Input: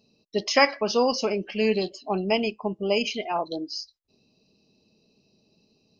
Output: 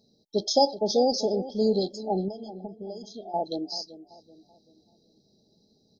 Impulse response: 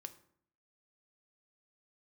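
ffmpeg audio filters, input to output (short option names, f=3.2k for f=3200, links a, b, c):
-filter_complex "[0:a]asettb=1/sr,asplit=3[a][b][c];[a]atrim=end=2.284[d];[b]atrim=start=2.28:end=3.34,asetpts=PTS-STARTPTS,afade=t=in:d=0.004:c=qsin,afade=t=out:st=1.056:d=0.004:c=qsin,acompressor=threshold=-35dB:ratio=16[e];[c]atrim=start=3.336[f];[d][e]acrossfade=d=0.004:c1=hsin:c2=qsin[g];[g][f]acrossfade=d=0.004:c1=qsin:c2=hsin,asplit=2[h][i];[i]adelay=384,lowpass=f=1.1k:p=1,volume=-14dB,asplit=2[j][k];[k]adelay=384,lowpass=f=1.1k:p=1,volume=0.44,asplit=2[l][m];[m]adelay=384,lowpass=f=1.1k:p=1,volume=0.44,asplit=2[n][o];[o]adelay=384,lowpass=f=1.1k:p=1,volume=0.44[p];[h][j][l][n][p]amix=inputs=5:normalize=0,afftfilt=real='re*(1-between(b*sr/4096,870,3200))':imag='im*(1-between(b*sr/4096,870,3200))':win_size=4096:overlap=0.75"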